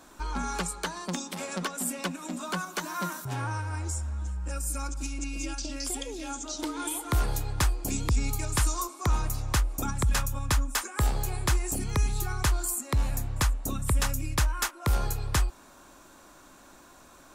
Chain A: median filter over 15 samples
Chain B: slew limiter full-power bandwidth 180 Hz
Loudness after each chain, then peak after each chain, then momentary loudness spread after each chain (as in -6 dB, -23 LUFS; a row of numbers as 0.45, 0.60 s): -32.5, -31.0 LUFS; -17.0, -17.0 dBFS; 7, 6 LU